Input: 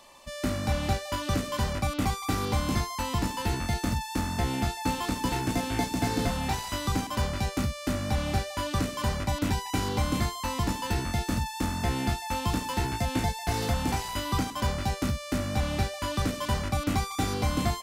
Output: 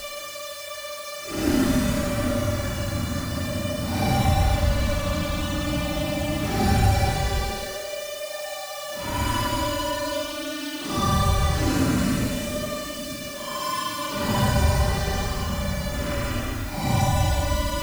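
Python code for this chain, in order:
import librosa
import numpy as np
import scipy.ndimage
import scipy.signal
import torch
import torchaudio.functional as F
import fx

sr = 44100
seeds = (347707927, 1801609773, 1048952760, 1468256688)

y = fx.quant_dither(x, sr, seeds[0], bits=8, dither='triangular')
y = fx.paulstretch(y, sr, seeds[1], factor=11.0, window_s=0.05, from_s=7.74)
y = y * 10.0 ** (4.5 / 20.0)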